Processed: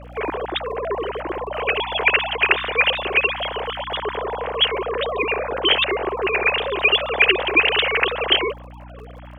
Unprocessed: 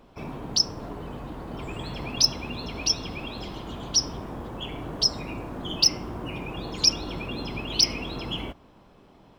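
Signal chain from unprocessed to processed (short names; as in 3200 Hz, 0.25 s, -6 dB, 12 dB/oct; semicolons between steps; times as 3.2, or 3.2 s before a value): sine-wave speech; crackle 44/s -52 dBFS; hum 60 Hz, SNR 18 dB; gain +8 dB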